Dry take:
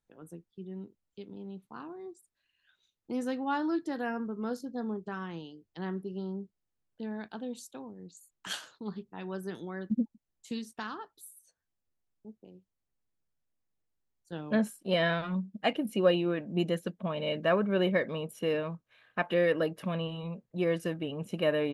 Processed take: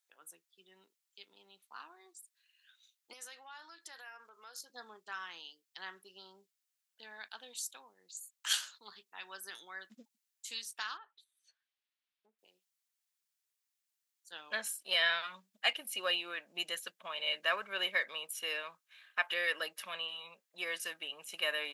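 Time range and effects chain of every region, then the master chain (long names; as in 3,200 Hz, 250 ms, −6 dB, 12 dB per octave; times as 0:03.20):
0:03.13–0:04.70: high-pass filter 410 Hz + downward compressor 16 to 1, threshold −41 dBFS
0:10.97–0:12.39: treble cut that deepens with the level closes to 1,900 Hz, closed at −45 dBFS + high shelf with overshoot 5,000 Hz −12.5 dB, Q 1.5 + downward compressor 4 to 1, threshold −47 dBFS
whole clip: high-pass filter 1,300 Hz 12 dB per octave; high-shelf EQ 2,600 Hz +9.5 dB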